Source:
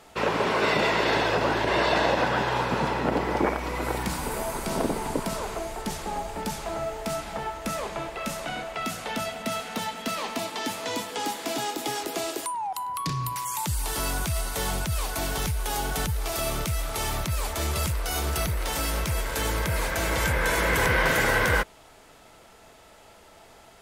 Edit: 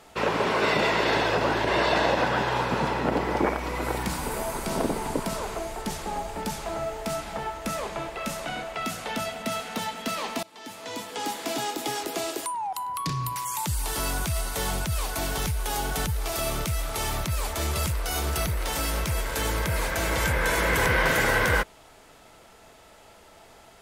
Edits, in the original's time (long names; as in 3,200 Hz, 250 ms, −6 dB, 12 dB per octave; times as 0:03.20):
0:10.43–0:11.37: fade in, from −23.5 dB